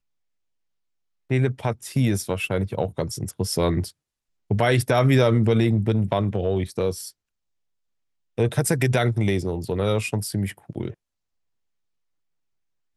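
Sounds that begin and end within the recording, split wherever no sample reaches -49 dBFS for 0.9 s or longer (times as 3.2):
1.3–7.11
8.38–10.94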